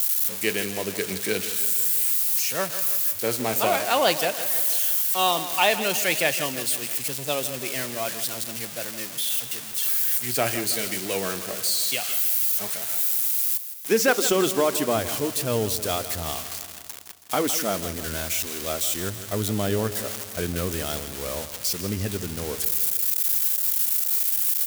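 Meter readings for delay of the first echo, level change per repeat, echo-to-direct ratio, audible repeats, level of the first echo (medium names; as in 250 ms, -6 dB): 162 ms, -4.5 dB, -11.0 dB, 5, -13.0 dB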